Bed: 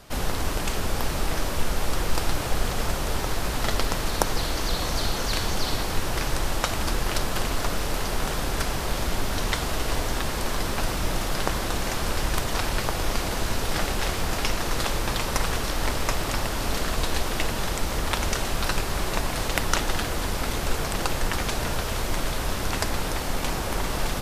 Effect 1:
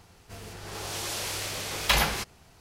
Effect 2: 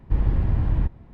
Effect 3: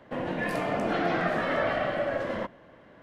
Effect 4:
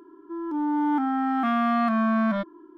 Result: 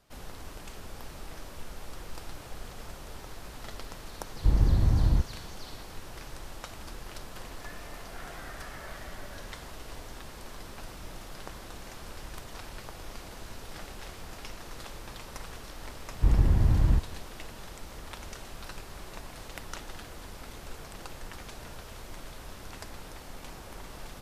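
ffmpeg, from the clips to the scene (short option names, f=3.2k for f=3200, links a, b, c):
-filter_complex "[2:a]asplit=2[a][b];[0:a]volume=-17dB[c];[a]lowpass=1.9k[d];[3:a]bandpass=f=1.7k:t=q:w=0.99:csg=0[e];[d]atrim=end=1.13,asetpts=PTS-STARTPTS,volume=-1.5dB,afade=t=in:d=0.004:c=hsin,afade=t=out:st=1.126:d=0.004:c=hsin,adelay=4340[f];[e]atrim=end=3.02,asetpts=PTS-STARTPTS,volume=-15dB,afade=t=in:d=0.004:c=hsin,afade=t=out:st=3.016:d=0.004:c=hsin,adelay=7240[g];[b]atrim=end=1.13,asetpts=PTS-STARTPTS,volume=-1dB,afade=t=in:d=0.004:c=hsin,afade=t=out:st=1.126:d=0.004:c=hsin,adelay=16120[h];[c][f][g][h]amix=inputs=4:normalize=0"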